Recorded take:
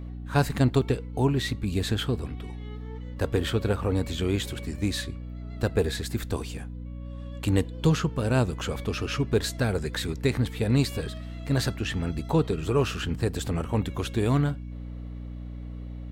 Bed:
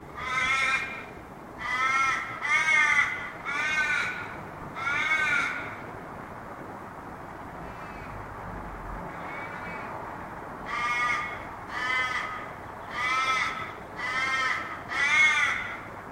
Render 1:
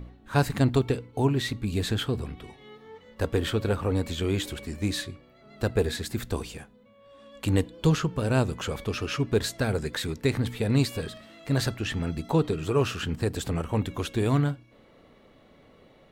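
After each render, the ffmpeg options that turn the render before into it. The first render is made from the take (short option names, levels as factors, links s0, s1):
-af "bandreject=f=60:t=h:w=4,bandreject=f=120:t=h:w=4,bandreject=f=180:t=h:w=4,bandreject=f=240:t=h:w=4,bandreject=f=300:t=h:w=4"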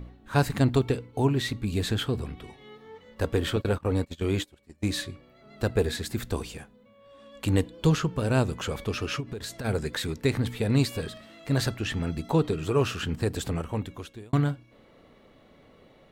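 -filter_complex "[0:a]asettb=1/sr,asplit=3[s0][s1][s2];[s0]atrim=end=3.564[s3];[s1]atrim=start=3.56:end=4.9,asetpts=PTS-STARTPTS,afade=t=in:d=0.004:c=qsin,afade=t=out:st=1.336:d=0.004:c=qsin,agate=range=0.0562:threshold=0.0282:ratio=16:release=100:detection=peak[s4];[s2]atrim=start=4.896[s5];[s3][s4]acrossfade=d=0.004:c1=hsin:c2=qsin[s6];[s6][s5]acrossfade=d=0.004:c1=qsin:c2=hsin,asplit=3[s7][s8][s9];[s7]afade=t=out:st=9.19:d=0.02[s10];[s8]acompressor=threshold=0.0282:ratio=16:attack=3.2:release=140:knee=1:detection=peak,afade=t=in:st=9.19:d=0.02,afade=t=out:st=9.64:d=0.02[s11];[s9]afade=t=in:st=9.64:d=0.02[s12];[s10][s11][s12]amix=inputs=3:normalize=0,asplit=2[s13][s14];[s13]atrim=end=14.33,asetpts=PTS-STARTPTS,afade=t=out:st=13.44:d=0.89[s15];[s14]atrim=start=14.33,asetpts=PTS-STARTPTS,afade=t=in:d=0.004:c=hsin[s16];[s15][s16]concat=n=2:v=0:a=1"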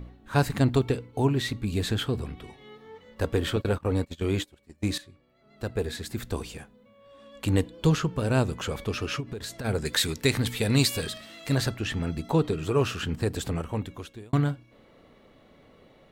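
-filter_complex "[0:a]asettb=1/sr,asplit=3[s0][s1][s2];[s0]atrim=end=9.854[s3];[s1]atrim=start=9.85:end=11.55,asetpts=PTS-STARTPTS,afade=t=in:d=0.004:c=qsin,afade=t=out:st=1.696:d=0.004:c=qsin,highshelf=f=2100:g=10.5[s4];[s2]atrim=start=11.546[s5];[s3][s4]acrossfade=d=0.004:c1=hsin:c2=qsin[s6];[s6][s5]acrossfade=d=0.004:c1=qsin:c2=hsin,asplit=2[s7][s8];[s7]atrim=end=4.98,asetpts=PTS-STARTPTS,afade=t=out:st=4.976:d=0.004:c=hsin:silence=0.16788[s9];[s8]atrim=start=4.98,asetpts=PTS-STARTPTS,afade=t=in:d=1.62:silence=0.16788[s10];[s9][s10]concat=n=2:v=0:a=1"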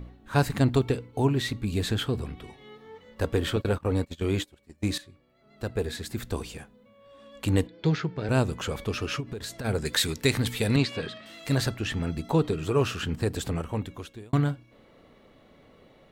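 -filter_complex "[0:a]asettb=1/sr,asplit=3[s0][s1][s2];[s0]atrim=end=7.674[s3];[s1]atrim=start=7.67:end=8.29,asetpts=PTS-STARTPTS,afade=t=in:d=0.004:c=qsin,afade=t=out:st=0.616:d=0.004:c=qsin,highpass=130,equalizer=f=240:t=q:w=4:g=-8,equalizer=f=540:t=q:w=4:g=-6,equalizer=f=1100:t=q:w=4:g=-10,equalizer=f=2100:t=q:w=4:g=6,equalizer=f=2900:t=q:w=4:g=-9,lowpass=f=4800:w=0.5412,lowpass=f=4800:w=1.3066[s4];[s2]atrim=start=8.286[s5];[s3][s4]acrossfade=d=0.004:c1=hsin:c2=qsin[s6];[s6][s5]acrossfade=d=0.004:c1=qsin:c2=hsin,asettb=1/sr,asplit=3[s7][s8][s9];[s7]atrim=end=10.764[s10];[s8]atrim=start=10.76:end=11.26,asetpts=PTS-STARTPTS,afade=t=in:d=0.004:c=qsin,afade=t=out:st=0.496:d=0.004:c=qsin,highpass=120,lowpass=3000[s11];[s9]atrim=start=11.256[s12];[s10][s11]acrossfade=d=0.004:c1=hsin:c2=qsin[s13];[s13][s12]acrossfade=d=0.004:c1=qsin:c2=hsin"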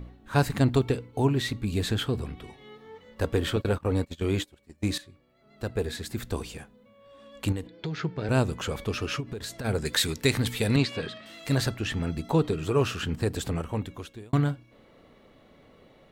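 -filter_complex "[0:a]asettb=1/sr,asplit=3[s0][s1][s2];[s0]atrim=end=7.524[s3];[s1]atrim=start=7.52:end=8,asetpts=PTS-STARTPTS,afade=t=in:d=0.004:c=qsin,afade=t=out:st=0.476:d=0.004:c=qsin,acompressor=threshold=0.0355:ratio=5:attack=3.2:release=140:knee=1:detection=peak[s4];[s2]atrim=start=7.996[s5];[s3][s4]acrossfade=d=0.004:c1=hsin:c2=qsin[s6];[s6][s5]acrossfade=d=0.004:c1=qsin:c2=hsin"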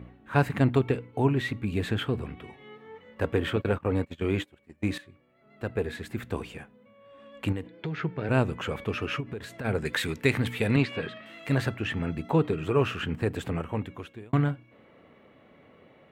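-af "highpass=86,highshelf=f=3400:t=q:w=1.5:g=-9.5"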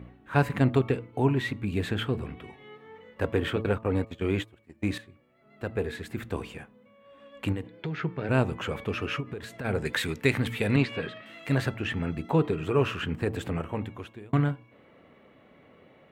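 -af "bandreject=f=111.2:t=h:w=4,bandreject=f=222.4:t=h:w=4,bandreject=f=333.6:t=h:w=4,bandreject=f=444.8:t=h:w=4,bandreject=f=556:t=h:w=4,bandreject=f=667.2:t=h:w=4,bandreject=f=778.4:t=h:w=4,bandreject=f=889.6:t=h:w=4,bandreject=f=1000.8:t=h:w=4,bandreject=f=1112:t=h:w=4,bandreject=f=1223.2:t=h:w=4"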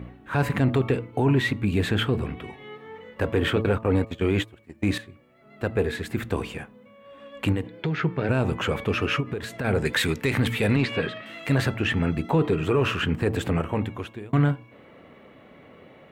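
-af "acontrast=69,alimiter=limit=0.237:level=0:latency=1:release=22"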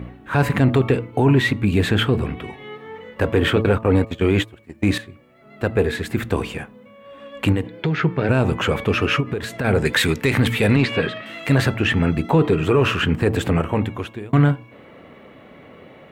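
-af "volume=1.88"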